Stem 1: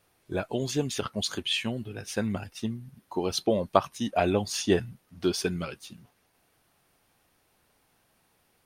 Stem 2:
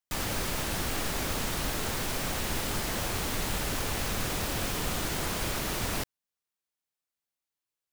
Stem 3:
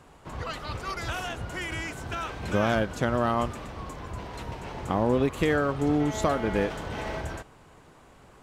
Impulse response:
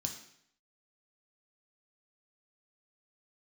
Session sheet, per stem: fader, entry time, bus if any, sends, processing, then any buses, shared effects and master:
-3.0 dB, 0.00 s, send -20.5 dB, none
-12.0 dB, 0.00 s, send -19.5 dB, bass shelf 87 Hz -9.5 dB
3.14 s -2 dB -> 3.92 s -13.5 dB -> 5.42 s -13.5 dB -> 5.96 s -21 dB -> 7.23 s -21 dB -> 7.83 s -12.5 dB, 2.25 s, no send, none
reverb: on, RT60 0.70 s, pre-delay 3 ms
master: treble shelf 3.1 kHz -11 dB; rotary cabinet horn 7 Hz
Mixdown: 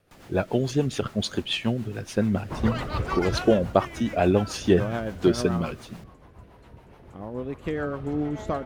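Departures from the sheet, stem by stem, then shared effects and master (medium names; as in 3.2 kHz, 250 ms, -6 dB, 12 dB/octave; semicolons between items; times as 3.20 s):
stem 1 -3.0 dB -> +6.5 dB; stem 3 -2.0 dB -> +9.0 dB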